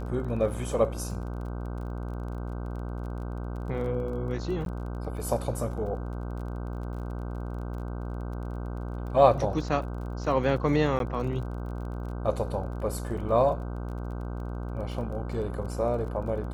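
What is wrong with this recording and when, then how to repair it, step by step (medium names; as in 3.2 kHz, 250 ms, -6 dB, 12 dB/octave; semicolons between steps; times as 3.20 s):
buzz 60 Hz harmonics 26 -34 dBFS
crackle 28 per s -39 dBFS
4.65–4.66 s: dropout 12 ms
10.99–11.00 s: dropout 12 ms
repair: de-click; de-hum 60 Hz, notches 26; interpolate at 4.65 s, 12 ms; interpolate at 10.99 s, 12 ms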